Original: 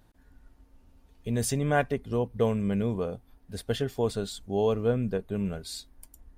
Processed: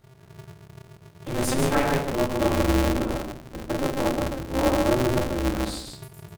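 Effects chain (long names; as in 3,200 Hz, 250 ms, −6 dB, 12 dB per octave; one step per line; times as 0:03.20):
0:03.12–0:05.24: Butterworth low-pass 1,500 Hz 96 dB per octave
single-tap delay 145 ms −5.5 dB
rectangular room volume 350 cubic metres, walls furnished, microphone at 3.5 metres
ring modulator with a square carrier 130 Hz
level −3.5 dB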